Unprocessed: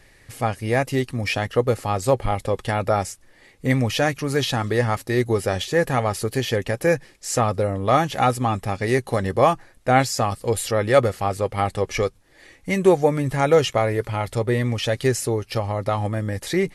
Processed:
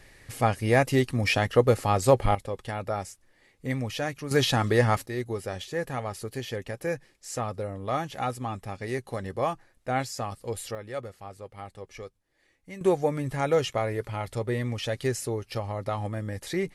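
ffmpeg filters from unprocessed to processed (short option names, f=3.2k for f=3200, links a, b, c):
-af "asetnsamples=n=441:p=0,asendcmd='2.35 volume volume -10dB;4.31 volume volume -1dB;5.06 volume volume -11dB;10.75 volume volume -19dB;12.81 volume volume -7.5dB',volume=-0.5dB"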